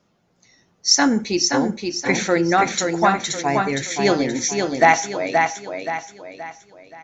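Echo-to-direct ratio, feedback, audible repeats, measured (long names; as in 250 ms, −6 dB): −3.5 dB, 40%, 4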